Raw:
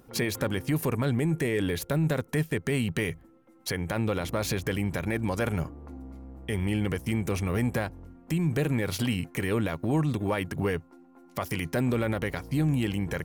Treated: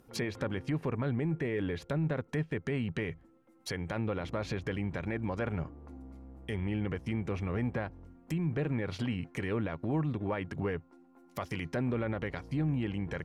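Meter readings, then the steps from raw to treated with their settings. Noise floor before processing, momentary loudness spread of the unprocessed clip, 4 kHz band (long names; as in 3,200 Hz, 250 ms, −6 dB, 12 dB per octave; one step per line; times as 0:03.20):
−56 dBFS, 8 LU, −9.0 dB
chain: treble cut that deepens with the level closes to 2,400 Hz, closed at −24 dBFS
level −5.5 dB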